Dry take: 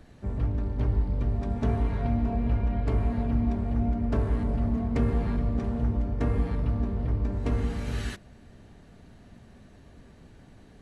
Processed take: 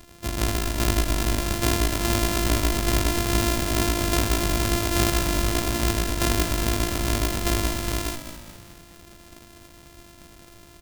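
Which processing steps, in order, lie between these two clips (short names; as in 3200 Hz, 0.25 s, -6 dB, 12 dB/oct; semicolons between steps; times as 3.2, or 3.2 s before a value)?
sample sorter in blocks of 128 samples; high shelf 2800 Hz +10.5 dB; frequency-shifting echo 0.205 s, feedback 47%, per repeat -53 Hz, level -10 dB; gain +1.5 dB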